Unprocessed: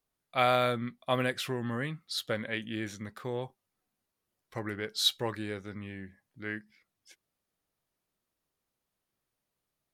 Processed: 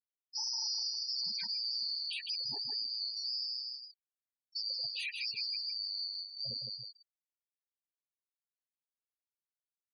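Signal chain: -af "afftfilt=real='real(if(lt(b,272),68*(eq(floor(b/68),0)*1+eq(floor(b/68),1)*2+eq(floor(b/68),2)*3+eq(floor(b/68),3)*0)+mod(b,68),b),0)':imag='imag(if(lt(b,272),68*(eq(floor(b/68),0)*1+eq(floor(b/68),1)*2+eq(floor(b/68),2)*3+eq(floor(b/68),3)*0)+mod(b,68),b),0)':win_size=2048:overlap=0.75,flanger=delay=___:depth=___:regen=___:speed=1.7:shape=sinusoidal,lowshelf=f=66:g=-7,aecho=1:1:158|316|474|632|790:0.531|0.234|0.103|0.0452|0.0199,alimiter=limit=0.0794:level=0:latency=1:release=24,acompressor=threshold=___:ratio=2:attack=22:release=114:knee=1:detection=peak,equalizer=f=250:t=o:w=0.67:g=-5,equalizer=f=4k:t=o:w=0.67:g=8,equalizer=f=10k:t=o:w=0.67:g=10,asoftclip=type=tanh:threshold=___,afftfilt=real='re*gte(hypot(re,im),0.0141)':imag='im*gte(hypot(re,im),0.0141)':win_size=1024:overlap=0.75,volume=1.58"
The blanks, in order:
7.4, 10, 3, 0.00398, 0.0178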